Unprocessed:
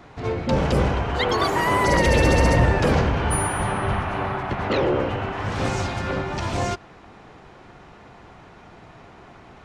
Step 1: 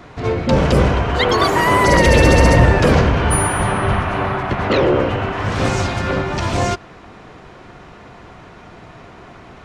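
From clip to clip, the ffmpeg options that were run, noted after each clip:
-af "bandreject=f=830:w=12,volume=6.5dB"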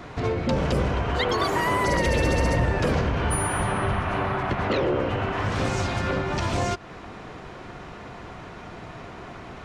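-af "acompressor=threshold=-25dB:ratio=2.5"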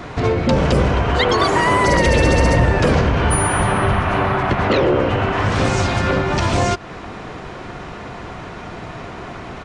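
-af "aresample=22050,aresample=44100,volume=8dB"

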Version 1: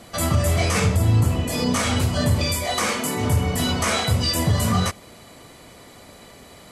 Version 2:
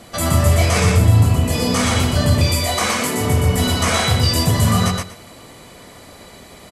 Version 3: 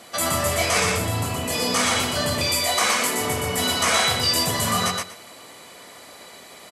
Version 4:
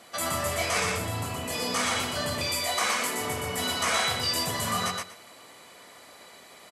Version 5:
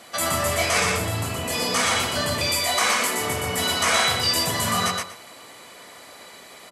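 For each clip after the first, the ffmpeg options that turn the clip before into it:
-af "aecho=1:1:120|240|360:0.708|0.127|0.0229,volume=2.5dB"
-af "highpass=f=620:p=1"
-af "equalizer=f=1.4k:t=o:w=2.2:g=2.5,volume=-7.5dB"
-af "bandreject=f=49.51:t=h:w=4,bandreject=f=99.02:t=h:w=4,bandreject=f=148.53:t=h:w=4,bandreject=f=198.04:t=h:w=4,bandreject=f=247.55:t=h:w=4,bandreject=f=297.06:t=h:w=4,bandreject=f=346.57:t=h:w=4,bandreject=f=396.08:t=h:w=4,bandreject=f=445.59:t=h:w=4,bandreject=f=495.1:t=h:w=4,bandreject=f=544.61:t=h:w=4,bandreject=f=594.12:t=h:w=4,bandreject=f=643.63:t=h:w=4,bandreject=f=693.14:t=h:w=4,bandreject=f=742.65:t=h:w=4,bandreject=f=792.16:t=h:w=4,bandreject=f=841.67:t=h:w=4,bandreject=f=891.18:t=h:w=4,bandreject=f=940.69:t=h:w=4,bandreject=f=990.2:t=h:w=4,bandreject=f=1.03971k:t=h:w=4,bandreject=f=1.08922k:t=h:w=4,bandreject=f=1.13873k:t=h:w=4,bandreject=f=1.18824k:t=h:w=4,bandreject=f=1.23775k:t=h:w=4,bandreject=f=1.28726k:t=h:w=4,bandreject=f=1.33677k:t=h:w=4,bandreject=f=1.38628k:t=h:w=4,volume=6dB"

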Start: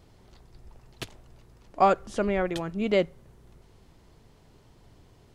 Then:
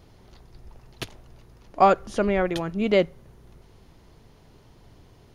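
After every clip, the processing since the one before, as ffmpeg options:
-af "bandreject=f=7.8k:w=5.5,volume=3.5dB"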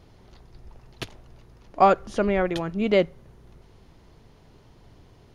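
-af "highshelf=f=9.3k:g=-7.5"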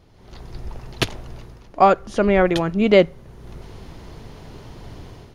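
-af "dynaudnorm=f=130:g=5:m=15dB,volume=-1dB"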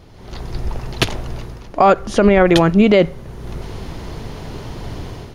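-af "alimiter=level_in=11dB:limit=-1dB:release=50:level=0:latency=1,volume=-1.5dB"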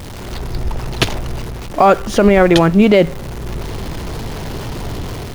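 -af "aeval=exprs='val(0)+0.5*0.0447*sgn(val(0))':c=same,volume=1dB"

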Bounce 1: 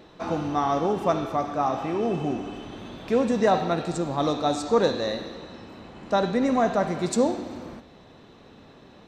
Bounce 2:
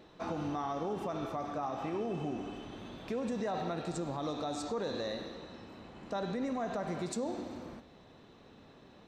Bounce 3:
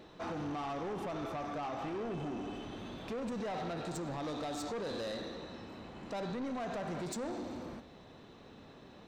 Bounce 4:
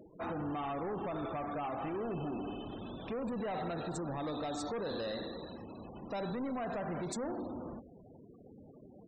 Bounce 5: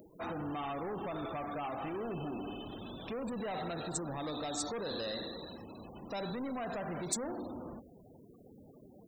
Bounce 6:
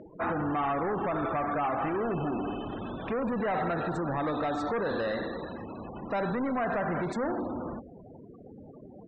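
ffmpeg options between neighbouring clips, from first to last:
-af "alimiter=limit=-20.5dB:level=0:latency=1:release=77,volume=-7dB"
-af "asoftclip=type=tanh:threshold=-37.5dB,volume=2.5dB"
-af "afftfilt=real='re*gte(hypot(re,im),0.00501)':imag='im*gte(hypot(re,im),0.00501)':win_size=1024:overlap=0.75,volume=1dB"
-af "aemphasis=mode=production:type=75kf,volume=-1.5dB"
-af "lowpass=f=1.7k:t=q:w=1.6,volume=8dB"

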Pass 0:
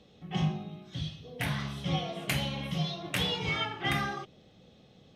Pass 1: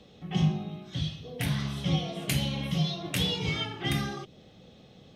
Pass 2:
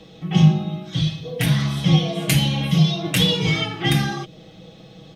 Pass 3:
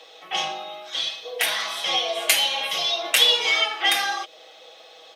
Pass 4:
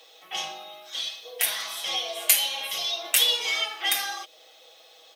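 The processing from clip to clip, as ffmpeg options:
-filter_complex "[0:a]acrossover=split=450|3000[a][b][c];[b]acompressor=threshold=-47dB:ratio=3[d];[a][d][c]amix=inputs=3:normalize=0,volume=4.5dB"
-af "aecho=1:1:6.2:0.65,volume=8dB"
-af "highpass=f=580:w=0.5412,highpass=f=580:w=1.3066,volume=4dB"
-af "aemphasis=mode=production:type=50fm,volume=-8dB"

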